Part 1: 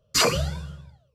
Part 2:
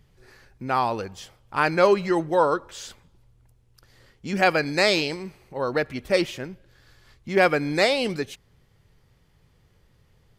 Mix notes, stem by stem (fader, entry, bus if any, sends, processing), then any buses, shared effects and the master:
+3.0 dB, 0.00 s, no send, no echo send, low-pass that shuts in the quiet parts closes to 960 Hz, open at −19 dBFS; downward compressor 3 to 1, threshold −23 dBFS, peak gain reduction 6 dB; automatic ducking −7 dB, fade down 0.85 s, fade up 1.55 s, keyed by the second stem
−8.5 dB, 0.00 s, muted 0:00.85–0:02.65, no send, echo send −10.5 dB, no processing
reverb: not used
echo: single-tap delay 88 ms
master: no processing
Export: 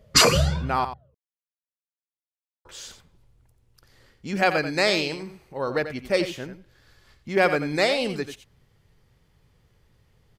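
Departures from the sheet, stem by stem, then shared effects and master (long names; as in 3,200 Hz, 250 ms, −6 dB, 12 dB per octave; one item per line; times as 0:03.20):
stem 1 +3.0 dB → +11.0 dB
stem 2 −8.5 dB → −1.5 dB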